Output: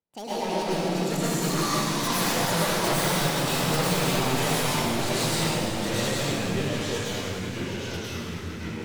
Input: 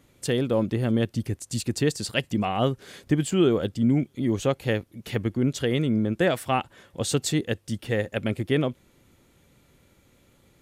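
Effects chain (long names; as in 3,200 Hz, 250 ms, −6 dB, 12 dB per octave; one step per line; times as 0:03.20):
gliding playback speed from 165% → 75%
source passing by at 0:02.99, 13 m/s, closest 13 metres
noise gate with hold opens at −51 dBFS
low-pass that shuts in the quiet parts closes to 2,000 Hz, open at −21 dBFS
first-order pre-emphasis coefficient 0.8
hum removal 61.85 Hz, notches 4
in parallel at +1.5 dB: brickwall limiter −31 dBFS, peak gain reduction 9.5 dB
on the sum: wave folding −34.5 dBFS
on a send: delay that swaps between a low-pass and a high-pass 155 ms, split 1,600 Hz, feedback 87%, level −13.5 dB
on the sum: delay with pitch and tempo change per echo 185 ms, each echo −2 semitones, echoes 3
dense smooth reverb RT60 1.6 s, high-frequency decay 1×, pre-delay 90 ms, DRR −9 dB
level +4 dB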